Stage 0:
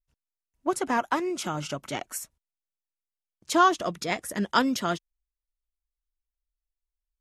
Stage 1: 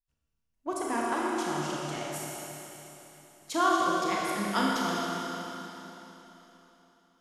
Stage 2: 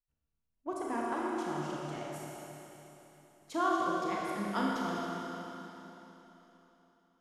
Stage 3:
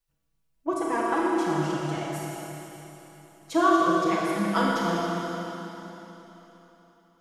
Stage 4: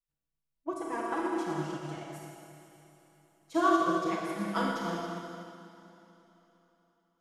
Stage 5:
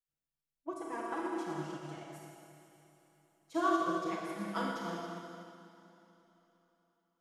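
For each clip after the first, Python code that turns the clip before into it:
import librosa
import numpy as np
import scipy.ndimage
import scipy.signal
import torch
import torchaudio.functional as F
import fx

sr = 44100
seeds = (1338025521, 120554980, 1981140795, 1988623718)

y1 = fx.rev_schroeder(x, sr, rt60_s=3.6, comb_ms=27, drr_db=-4.5)
y1 = y1 * 10.0 ** (-8.0 / 20.0)
y2 = fx.high_shelf(y1, sr, hz=2100.0, db=-9.5)
y2 = y2 * 10.0 ** (-3.5 / 20.0)
y3 = y2 + 0.95 * np.pad(y2, (int(6.1 * sr / 1000.0), 0))[:len(y2)]
y3 = y3 * 10.0 ** (6.5 / 20.0)
y4 = fx.upward_expand(y3, sr, threshold_db=-37.0, expansion=1.5)
y4 = y4 * 10.0 ** (-4.0 / 20.0)
y5 = fx.low_shelf(y4, sr, hz=75.0, db=-6.0)
y5 = y5 * 10.0 ** (-5.0 / 20.0)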